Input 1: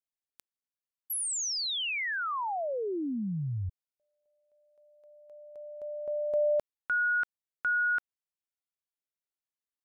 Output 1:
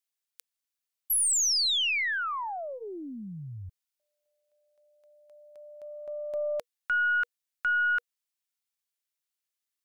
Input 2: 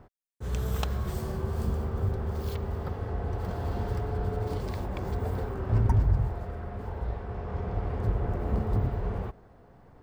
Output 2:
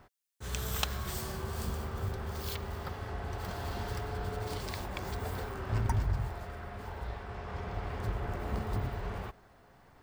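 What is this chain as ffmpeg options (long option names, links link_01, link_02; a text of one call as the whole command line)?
ffmpeg -i in.wav -af "tiltshelf=frequency=1100:gain=-7.5,aeval=exprs='0.251*(cos(1*acos(clip(val(0)/0.251,-1,1)))-cos(1*PI/2))+0.0112*(cos(4*acos(clip(val(0)/0.251,-1,1)))-cos(4*PI/2))':channel_layout=same,bandreject=frequency=480:width=14" out.wav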